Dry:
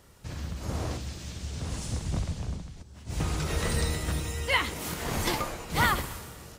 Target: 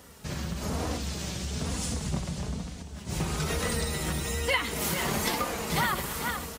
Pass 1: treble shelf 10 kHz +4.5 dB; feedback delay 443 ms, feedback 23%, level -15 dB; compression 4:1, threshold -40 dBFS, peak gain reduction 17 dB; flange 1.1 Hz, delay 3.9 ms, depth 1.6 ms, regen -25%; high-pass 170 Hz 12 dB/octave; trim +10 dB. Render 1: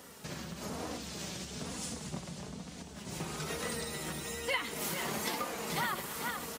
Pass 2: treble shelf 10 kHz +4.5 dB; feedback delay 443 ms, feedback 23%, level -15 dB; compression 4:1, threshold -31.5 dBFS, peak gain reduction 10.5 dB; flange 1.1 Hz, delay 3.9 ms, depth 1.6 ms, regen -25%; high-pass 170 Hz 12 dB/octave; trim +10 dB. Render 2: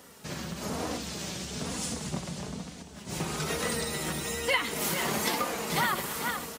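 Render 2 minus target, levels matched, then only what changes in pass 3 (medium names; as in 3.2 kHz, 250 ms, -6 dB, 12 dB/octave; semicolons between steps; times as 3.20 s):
125 Hz band -5.0 dB
change: high-pass 69 Hz 12 dB/octave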